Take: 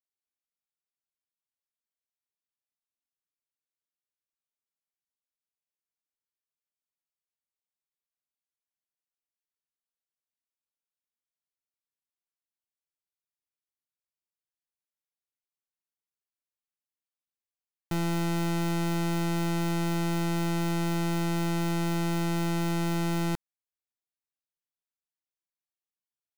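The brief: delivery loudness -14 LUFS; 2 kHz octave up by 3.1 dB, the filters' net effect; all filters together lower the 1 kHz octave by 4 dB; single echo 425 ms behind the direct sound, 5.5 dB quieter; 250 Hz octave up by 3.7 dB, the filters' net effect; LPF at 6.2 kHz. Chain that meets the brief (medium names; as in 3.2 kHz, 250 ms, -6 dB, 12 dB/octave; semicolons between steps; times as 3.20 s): low-pass 6.2 kHz; peaking EQ 250 Hz +8 dB; peaking EQ 1 kHz -7.5 dB; peaking EQ 2 kHz +6 dB; delay 425 ms -5.5 dB; trim +11 dB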